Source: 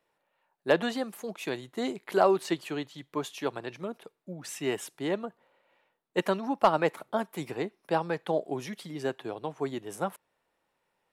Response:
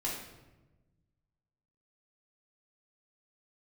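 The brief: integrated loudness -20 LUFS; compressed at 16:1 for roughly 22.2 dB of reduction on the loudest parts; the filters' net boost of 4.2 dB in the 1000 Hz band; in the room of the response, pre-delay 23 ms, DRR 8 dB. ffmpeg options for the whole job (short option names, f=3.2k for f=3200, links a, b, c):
-filter_complex "[0:a]equalizer=f=1k:t=o:g=5.5,acompressor=threshold=-36dB:ratio=16,asplit=2[a][b];[1:a]atrim=start_sample=2205,adelay=23[c];[b][c]afir=irnorm=-1:irlink=0,volume=-12dB[d];[a][d]amix=inputs=2:normalize=0,volume=21.5dB"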